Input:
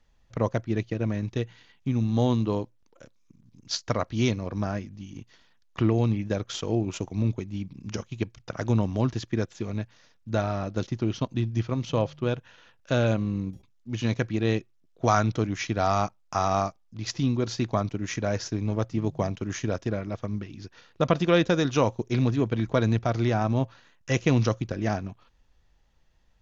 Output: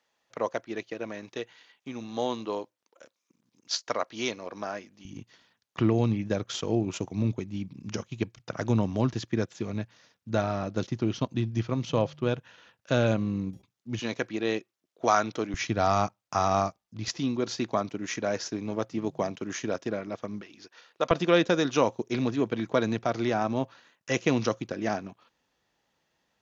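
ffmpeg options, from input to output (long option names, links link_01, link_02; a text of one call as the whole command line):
ffmpeg -i in.wav -af "asetnsamples=nb_out_samples=441:pad=0,asendcmd='5.05 highpass f 110;13.99 highpass f 310;15.54 highpass f 89;17.08 highpass f 230;20.41 highpass f 470;21.11 highpass f 220',highpass=440" out.wav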